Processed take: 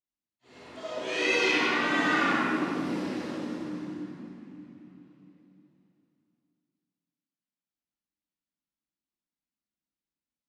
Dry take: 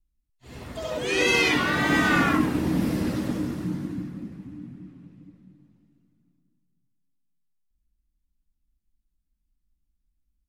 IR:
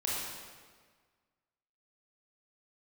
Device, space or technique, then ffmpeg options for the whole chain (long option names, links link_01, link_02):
supermarket ceiling speaker: -filter_complex "[0:a]highpass=270,lowpass=6100[link_01];[1:a]atrim=start_sample=2205[link_02];[link_01][link_02]afir=irnorm=-1:irlink=0,volume=-8.5dB"